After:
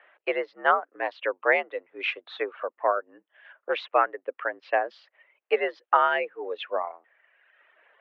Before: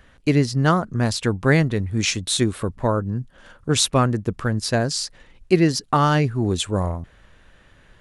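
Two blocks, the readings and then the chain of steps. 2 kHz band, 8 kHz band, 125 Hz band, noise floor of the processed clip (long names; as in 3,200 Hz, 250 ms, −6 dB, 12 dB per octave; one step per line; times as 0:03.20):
−0.5 dB, below −40 dB, below −40 dB, −84 dBFS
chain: single-sideband voice off tune +69 Hz 430–2,700 Hz
reverb reduction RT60 1.2 s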